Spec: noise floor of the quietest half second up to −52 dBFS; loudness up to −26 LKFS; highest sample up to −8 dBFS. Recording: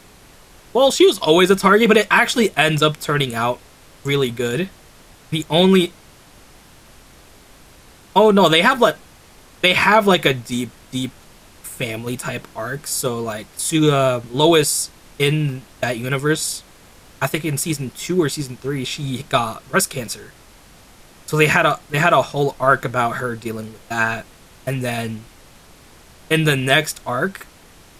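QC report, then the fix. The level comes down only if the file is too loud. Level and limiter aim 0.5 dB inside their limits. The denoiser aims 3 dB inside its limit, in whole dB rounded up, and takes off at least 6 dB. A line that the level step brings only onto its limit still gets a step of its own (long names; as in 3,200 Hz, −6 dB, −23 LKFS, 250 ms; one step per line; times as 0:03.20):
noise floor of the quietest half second −46 dBFS: out of spec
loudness −18.0 LKFS: out of spec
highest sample −1.5 dBFS: out of spec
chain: level −8.5 dB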